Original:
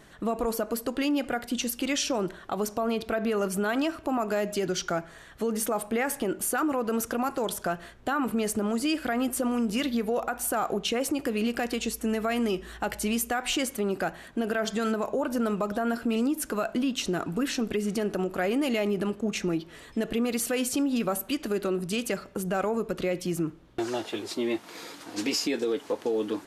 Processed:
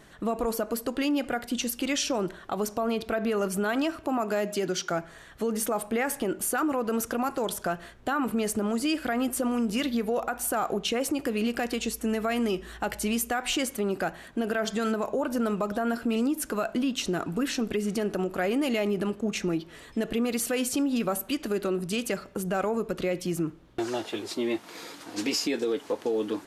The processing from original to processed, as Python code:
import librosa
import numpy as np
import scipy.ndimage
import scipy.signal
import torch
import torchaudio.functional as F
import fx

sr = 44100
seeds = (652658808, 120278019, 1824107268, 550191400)

y = fx.highpass(x, sr, hz=fx.line((4.04, 75.0), (4.9, 170.0)), slope=12, at=(4.04, 4.9), fade=0.02)